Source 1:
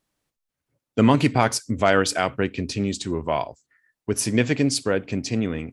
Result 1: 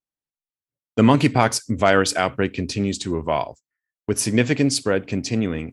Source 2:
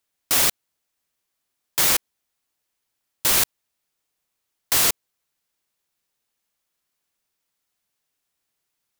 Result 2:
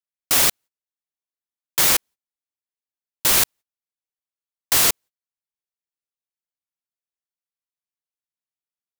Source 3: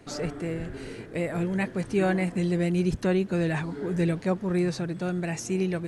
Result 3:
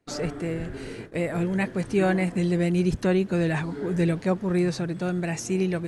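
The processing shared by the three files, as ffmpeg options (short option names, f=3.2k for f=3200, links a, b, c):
-af "agate=range=-23dB:threshold=-41dB:ratio=16:detection=peak,volume=2dB"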